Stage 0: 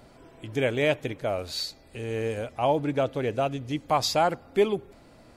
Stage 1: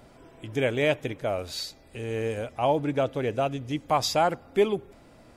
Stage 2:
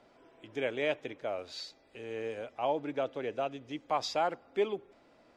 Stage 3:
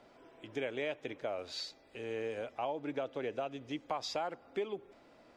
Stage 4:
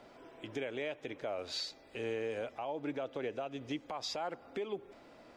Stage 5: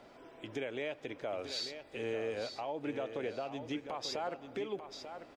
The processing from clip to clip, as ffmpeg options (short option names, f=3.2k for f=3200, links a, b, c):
-af "bandreject=f=4.3k:w=10"
-filter_complex "[0:a]acrossover=split=240 6500:gain=0.2 1 0.0891[a][b][c];[a][b][c]amix=inputs=3:normalize=0,volume=-7dB"
-af "acompressor=threshold=-35dB:ratio=5,volume=1.5dB"
-af "alimiter=level_in=8.5dB:limit=-24dB:level=0:latency=1:release=196,volume=-8.5dB,volume=4dB"
-af "aecho=1:1:891|1782|2673:0.355|0.0816|0.0188"